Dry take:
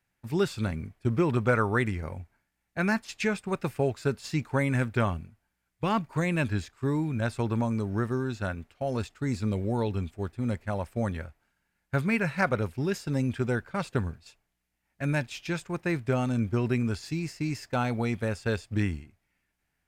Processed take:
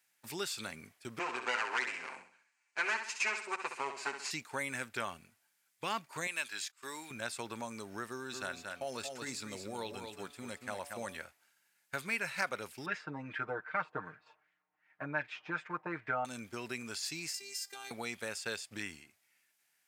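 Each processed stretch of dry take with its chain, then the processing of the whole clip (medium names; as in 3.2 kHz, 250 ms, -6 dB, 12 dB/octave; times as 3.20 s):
1.19–4.31 s: comb filter that takes the minimum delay 7.8 ms + cabinet simulation 330–7400 Hz, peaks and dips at 580 Hz -5 dB, 990 Hz +6 dB, 1.5 kHz +4 dB, 2.4 kHz +7 dB, 3.5 kHz -9 dB, 5.4 kHz -4 dB + flutter echo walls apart 11.1 m, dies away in 0.43 s
6.27–7.11 s: high-pass 1.3 kHz 6 dB/octave + gate -58 dBFS, range -15 dB + upward compressor, threshold -56 dBFS
8.08–11.16 s: de-hum 143.5 Hz, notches 9 + delay 230 ms -7.5 dB
12.86–16.25 s: treble shelf 8.3 kHz -5.5 dB + LFO low-pass sine 2.6 Hz 930–2000 Hz + comb 6.5 ms, depth 99%
17.34–17.91 s: treble shelf 2.9 kHz +11 dB + compression 12:1, threshold -38 dBFS + robot voice 396 Hz
whole clip: pre-emphasis filter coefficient 0.8; compression 2:1, threshold -48 dBFS; frequency weighting A; trim +11.5 dB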